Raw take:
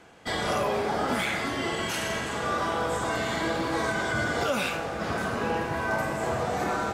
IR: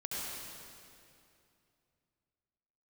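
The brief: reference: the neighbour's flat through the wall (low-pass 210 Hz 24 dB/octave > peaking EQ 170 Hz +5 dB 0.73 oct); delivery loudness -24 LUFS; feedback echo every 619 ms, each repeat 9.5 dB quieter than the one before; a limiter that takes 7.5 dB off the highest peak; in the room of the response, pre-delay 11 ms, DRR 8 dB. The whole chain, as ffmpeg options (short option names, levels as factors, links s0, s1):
-filter_complex "[0:a]alimiter=limit=0.0708:level=0:latency=1,aecho=1:1:619|1238|1857|2476:0.335|0.111|0.0365|0.012,asplit=2[s0][s1];[1:a]atrim=start_sample=2205,adelay=11[s2];[s1][s2]afir=irnorm=-1:irlink=0,volume=0.282[s3];[s0][s3]amix=inputs=2:normalize=0,lowpass=f=210:w=0.5412,lowpass=f=210:w=1.3066,equalizer=f=170:t=o:w=0.73:g=5,volume=6.31"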